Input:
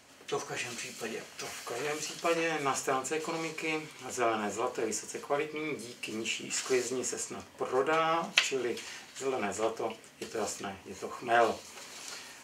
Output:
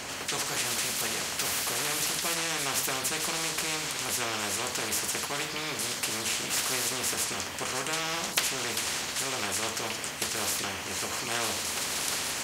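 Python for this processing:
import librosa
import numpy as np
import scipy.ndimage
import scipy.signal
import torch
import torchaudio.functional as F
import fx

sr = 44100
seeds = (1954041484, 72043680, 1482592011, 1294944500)

y = fx.spectral_comp(x, sr, ratio=4.0)
y = y * librosa.db_to_amplitude(-3.0)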